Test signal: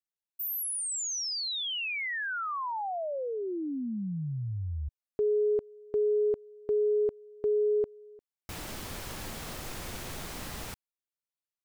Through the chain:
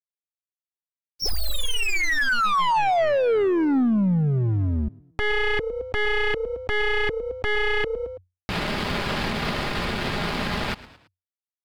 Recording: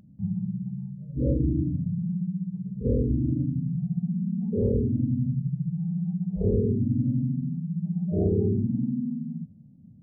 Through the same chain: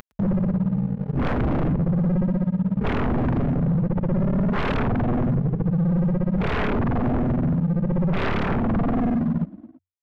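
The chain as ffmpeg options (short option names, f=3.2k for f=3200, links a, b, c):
-filter_complex "[0:a]aresample=11025,aresample=44100,acontrast=68,aemphasis=mode=production:type=bsi,aeval=exprs='0.299*(cos(1*acos(clip(val(0)/0.299,-1,1)))-cos(1*PI/2))+0.0237*(cos(2*acos(clip(val(0)/0.299,-1,1)))-cos(2*PI/2))':c=same,aeval=exprs='sgn(val(0))*max(abs(val(0))-0.0119,0)':c=same,aecho=1:1:4.9:0.32,asplit=2[a][b];[b]asplit=3[c][d][e];[c]adelay=110,afreqshift=30,volume=-23dB[f];[d]adelay=220,afreqshift=60,volume=-30.5dB[g];[e]adelay=330,afreqshift=90,volume=-38.1dB[h];[f][g][h]amix=inputs=3:normalize=0[i];[a][i]amix=inputs=2:normalize=0,aeval=exprs='(tanh(7.08*val(0)+0.75)-tanh(0.75))/7.08':c=same,aeval=exprs='0.211*sin(PI/2*8.91*val(0)/0.211)':c=same,bass=f=250:g=9,treble=f=4k:g=-13,acompressor=threshold=-21dB:ratio=12:attack=0.14:release=278:knee=1:detection=rms,volume=4dB"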